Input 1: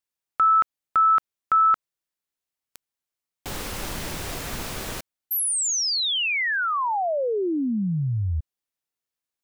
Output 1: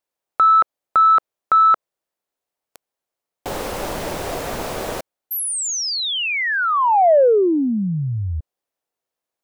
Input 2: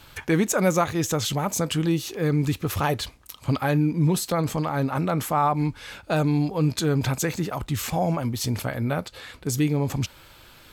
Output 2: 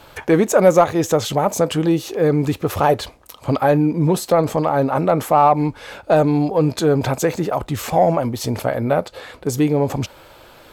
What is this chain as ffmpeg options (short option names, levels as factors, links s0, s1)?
-filter_complex "[0:a]equalizer=f=590:w=0.69:g=12.5,asplit=2[s0][s1];[s1]asoftclip=type=tanh:threshold=0.335,volume=0.501[s2];[s0][s2]amix=inputs=2:normalize=0,volume=0.708"